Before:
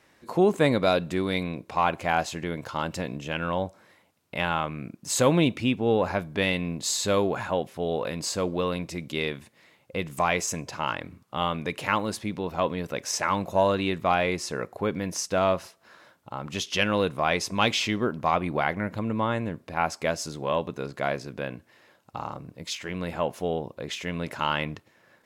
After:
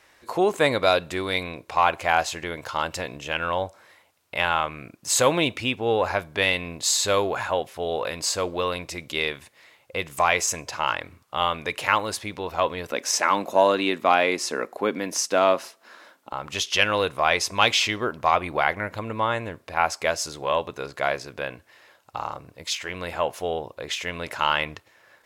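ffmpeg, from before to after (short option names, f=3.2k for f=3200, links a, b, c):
-filter_complex "[0:a]asettb=1/sr,asplit=3[a][b][c];[a]atrim=end=12.914[d];[b]atrim=start=12.91:end=16.33,asetpts=PTS-STARTPTS,afade=t=in:d=0.004:c=qsin,afade=t=out:st=3.416:d=0.004:c=qsin,highpass=f=240:t=q:w=2.9[e];[c]atrim=start=16.326[f];[d][e]acrossfade=d=0.004:c1=hsin:c2=qsin[g];[g][f]acrossfade=d=0.004:c1=qsin:c2=hsin,equalizer=f=190:t=o:w=1.8:g=-14,volume=5.5dB"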